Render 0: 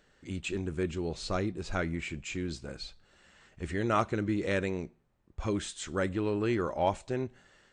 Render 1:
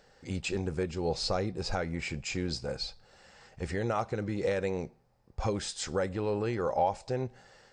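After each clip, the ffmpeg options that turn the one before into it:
-af "alimiter=level_in=1.19:limit=0.0631:level=0:latency=1:release=281,volume=0.841,equalizer=f=125:t=o:w=0.33:g=5,equalizer=f=315:t=o:w=0.33:g=-5,equalizer=f=500:t=o:w=0.33:g=9,equalizer=f=800:t=o:w=0.33:g=10,equalizer=f=3150:t=o:w=0.33:g=-3,equalizer=f=5000:t=o:w=0.33:g=11,volume=1.26"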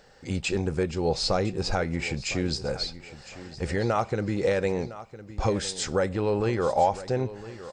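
-af "aecho=1:1:1008|2016|3024:0.168|0.0504|0.0151,volume=1.88"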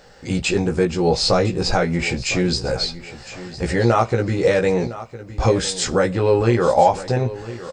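-filter_complex "[0:a]asplit=2[s0][s1];[s1]adelay=17,volume=0.708[s2];[s0][s2]amix=inputs=2:normalize=0,volume=2.11"

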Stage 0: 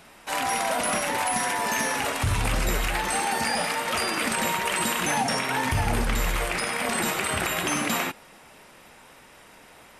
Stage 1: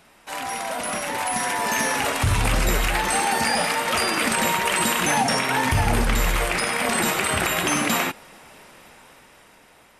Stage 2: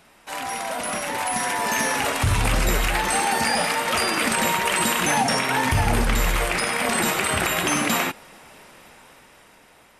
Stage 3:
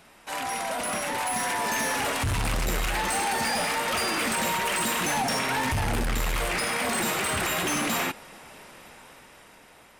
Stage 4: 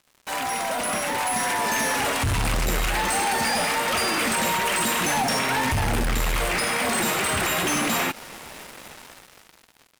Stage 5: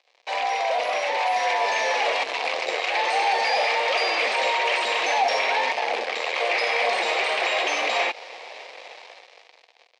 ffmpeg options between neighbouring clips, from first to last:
-af "dynaudnorm=f=310:g=9:m=2.51,volume=0.668"
-af anull
-af "asoftclip=type=tanh:threshold=0.0708"
-filter_complex "[0:a]asplit=2[s0][s1];[s1]alimiter=level_in=2.51:limit=0.0631:level=0:latency=1:release=111,volume=0.398,volume=1.26[s2];[s0][s2]amix=inputs=2:normalize=0,acrusher=bits=5:mix=0:aa=0.5"
-af "highpass=f=460:w=0.5412,highpass=f=460:w=1.3066,equalizer=f=500:t=q:w=4:g=7,equalizer=f=720:t=q:w=4:g=6,equalizer=f=1400:t=q:w=4:g=-10,equalizer=f=2300:t=q:w=4:g=6,equalizer=f=4100:t=q:w=4:g=3,lowpass=f=5200:w=0.5412,lowpass=f=5200:w=1.3066"

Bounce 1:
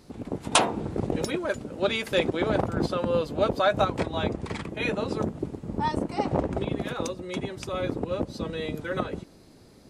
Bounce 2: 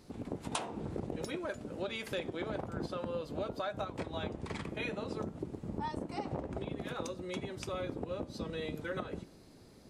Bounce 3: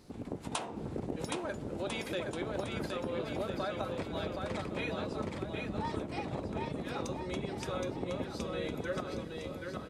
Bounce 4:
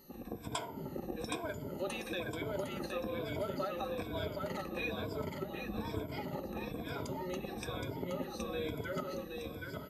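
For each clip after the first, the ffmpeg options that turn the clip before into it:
-af "acompressor=threshold=0.0316:ratio=6,flanger=delay=9.4:depth=4.8:regen=-84:speed=0.54:shape=triangular"
-af "aecho=1:1:770|1348|1781|2105|2349:0.631|0.398|0.251|0.158|0.1"
-af "afftfilt=real='re*pow(10,16/40*sin(2*PI*(1.7*log(max(b,1)*sr/1024/100)/log(2)-(-1.1)*(pts-256)/sr)))':imag='im*pow(10,16/40*sin(2*PI*(1.7*log(max(b,1)*sr/1024/100)/log(2)-(-1.1)*(pts-256)/sr)))':win_size=1024:overlap=0.75,aeval=exprs='val(0)+0.00141*sin(2*PI*12000*n/s)':c=same,volume=0.562"

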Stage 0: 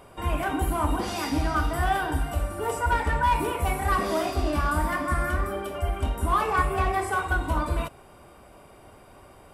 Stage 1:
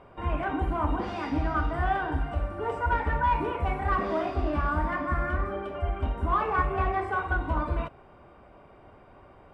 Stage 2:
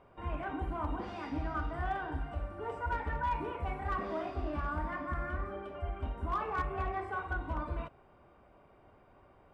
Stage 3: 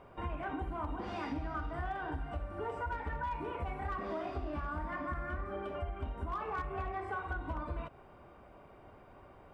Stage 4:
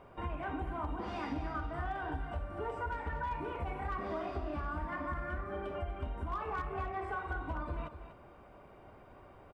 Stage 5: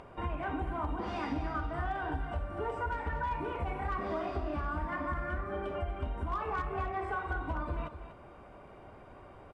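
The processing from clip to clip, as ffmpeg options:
-af "lowpass=2300,volume=0.794"
-af "volume=7.5,asoftclip=hard,volume=0.133,volume=0.376"
-af "acompressor=threshold=0.01:ratio=6,volume=1.78"
-af "aecho=1:1:242:0.299"
-af "acompressor=mode=upward:threshold=0.00282:ratio=2.5,volume=1.41" -ar 24000 -c:a aac -b:a 96k

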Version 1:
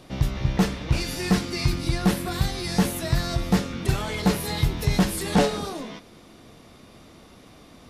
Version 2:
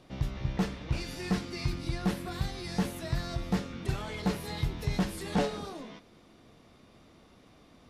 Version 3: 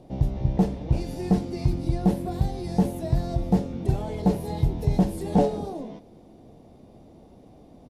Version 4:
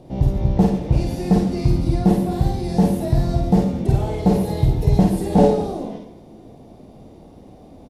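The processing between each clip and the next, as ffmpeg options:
-af "highshelf=f=7600:g=-8.5,volume=0.376"
-af "firequalizer=gain_entry='entry(800,0);entry(1200,-17);entry(10000,-8)':delay=0.05:min_phase=1,volume=2.66"
-af "aecho=1:1:51|115|141|219:0.708|0.282|0.237|0.188,volume=1.68"

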